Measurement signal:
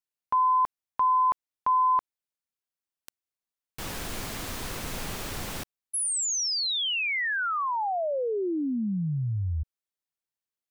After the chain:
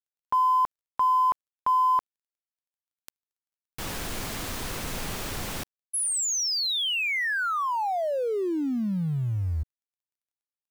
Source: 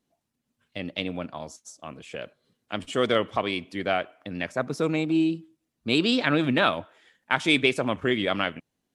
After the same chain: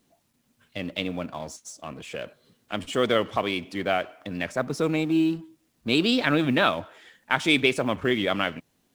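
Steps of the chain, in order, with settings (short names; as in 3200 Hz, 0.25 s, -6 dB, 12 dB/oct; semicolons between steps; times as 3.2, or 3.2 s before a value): G.711 law mismatch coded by mu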